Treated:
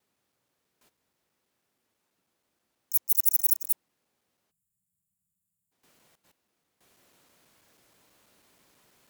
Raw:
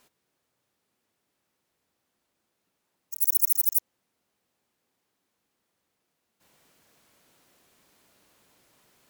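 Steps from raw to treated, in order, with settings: slices in reverse order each 0.162 s, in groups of 6; spectral delete 4.51–5.72, 200–6800 Hz

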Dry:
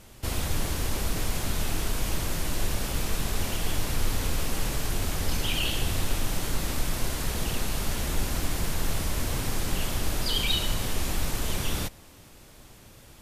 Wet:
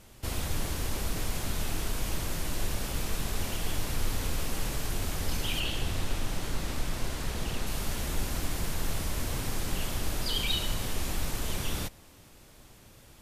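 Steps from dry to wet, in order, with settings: 5.6–7.67 high shelf 8700 Hz -8 dB; gain -3.5 dB

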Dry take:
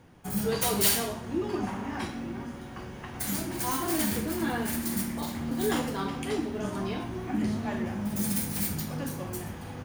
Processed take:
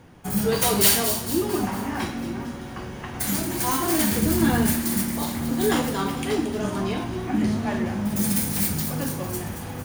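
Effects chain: 4.22–4.73 tone controls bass +9 dB, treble +4 dB; on a send: thin delay 0.227 s, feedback 53%, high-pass 3600 Hz, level -8 dB; on the sum: gain +6 dB

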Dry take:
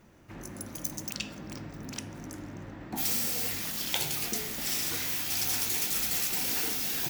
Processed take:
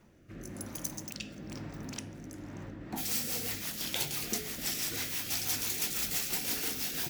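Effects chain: rotary speaker horn 1 Hz, later 6 Hz, at 2.36

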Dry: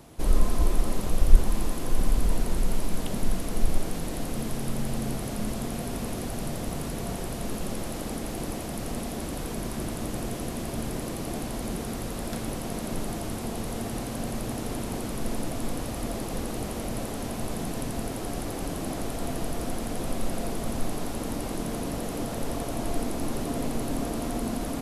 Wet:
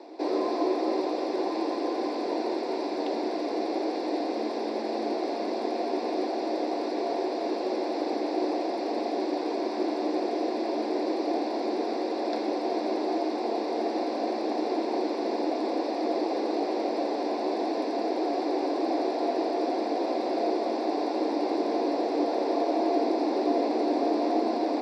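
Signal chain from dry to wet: elliptic high-pass 320 Hz, stop band 50 dB; air absorption 170 m; reverb, pre-delay 3 ms, DRR 10.5 dB

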